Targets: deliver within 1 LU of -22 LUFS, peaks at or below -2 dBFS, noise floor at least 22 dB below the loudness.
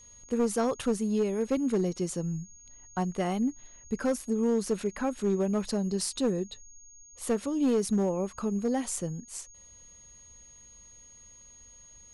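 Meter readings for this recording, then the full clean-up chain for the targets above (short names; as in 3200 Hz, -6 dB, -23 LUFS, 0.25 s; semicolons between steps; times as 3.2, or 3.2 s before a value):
clipped 0.9%; flat tops at -20.5 dBFS; steady tone 6600 Hz; tone level -51 dBFS; loudness -30.0 LUFS; peak -20.5 dBFS; loudness target -22.0 LUFS
-> clip repair -20.5 dBFS; notch 6600 Hz, Q 30; gain +8 dB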